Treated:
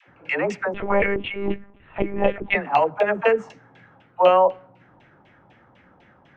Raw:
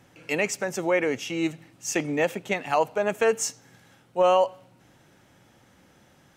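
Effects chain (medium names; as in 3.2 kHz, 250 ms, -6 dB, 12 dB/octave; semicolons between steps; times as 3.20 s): LFO low-pass saw down 4 Hz 770–2900 Hz; phase dispersion lows, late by 84 ms, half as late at 450 Hz; 0.74–2.55 s: monotone LPC vocoder at 8 kHz 200 Hz; trim +2 dB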